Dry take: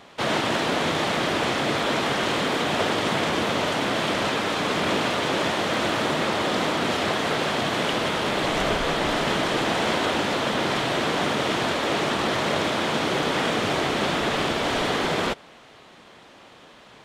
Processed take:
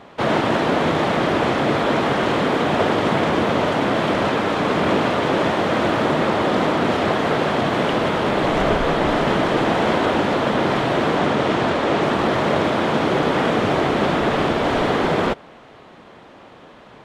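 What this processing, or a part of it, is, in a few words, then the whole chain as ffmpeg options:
through cloth: -filter_complex "[0:a]highshelf=f=2500:g=-14,asettb=1/sr,asplit=3[s0][s1][s2];[s0]atrim=end=11.184[s3];[s1]atrim=start=11.18:end=12.03,asetpts=PTS-STARTPTS,afade=t=in:d=0.004:c=qsin,afade=t=out:st=0.846:d=0.004:c=qsin,lowpass=10000[s4];[s2]atrim=start=12.026[s5];[s3][s4]acrossfade=d=0.004:c1=hsin:c2=qsin[s6];[s6][s5]acrossfade=d=0.004:c1=qsin:c2=hsin,volume=2.24"

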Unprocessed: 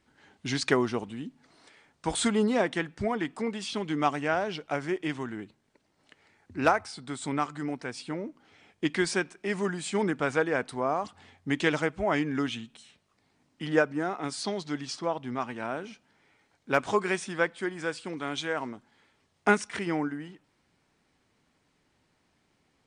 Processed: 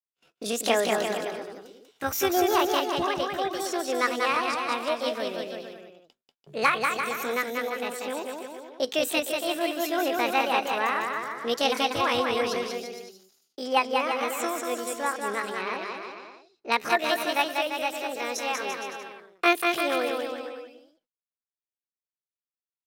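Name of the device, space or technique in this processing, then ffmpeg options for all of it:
chipmunk voice: -filter_complex "[0:a]agate=range=0.00398:threshold=0.00158:ratio=16:detection=peak,asetrate=74167,aresample=44100,atempo=0.594604,asettb=1/sr,asplit=3[s0][s1][s2];[s0]atrim=end=15.564[s3];[s1]atrim=start=15.56:end=16.72,asetpts=PTS-STARTPTS,afade=t=in:d=0.004:c=qsin,afade=t=out:st=1.156:d=0.004:c=qsin,lowpass=f=5800:w=0.5412,lowpass=f=5800:w=1.3066[s4];[s2]atrim=start=16.716[s5];[s3][s4]acrossfade=d=0.004:c1=hsin:c2=qsin[s6];[s6][s5]acrossfade=d=0.004:c1=qsin:c2=hsin,aecho=1:1:190|342|463.6|560.9|638.7:0.631|0.398|0.251|0.158|0.1,volume=1.12"

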